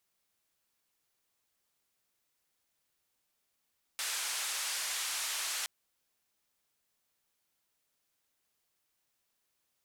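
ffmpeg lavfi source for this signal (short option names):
-f lavfi -i "anoisesrc=c=white:d=1.67:r=44100:seed=1,highpass=f=1000,lowpass=f=9500,volume=-27.1dB"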